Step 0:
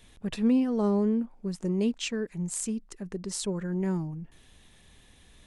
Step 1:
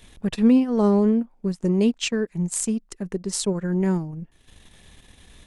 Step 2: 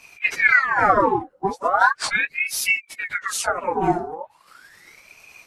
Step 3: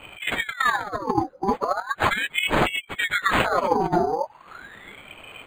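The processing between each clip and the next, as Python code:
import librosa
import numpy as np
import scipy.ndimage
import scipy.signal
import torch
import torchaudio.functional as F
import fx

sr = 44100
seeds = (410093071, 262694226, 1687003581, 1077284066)

y1 = fx.transient(x, sr, attack_db=1, sustain_db=-11)
y1 = F.gain(torch.from_numpy(y1), 7.0).numpy()
y2 = fx.phase_scramble(y1, sr, seeds[0], window_ms=50)
y2 = fx.ring_lfo(y2, sr, carrier_hz=1500.0, swing_pct=65, hz=0.38)
y2 = F.gain(torch.from_numpy(y2), 4.0).numpy()
y3 = fx.over_compress(y2, sr, threshold_db=-24.0, ratio=-0.5)
y3 = np.interp(np.arange(len(y3)), np.arange(len(y3))[::8], y3[::8])
y3 = F.gain(torch.from_numpy(y3), 3.5).numpy()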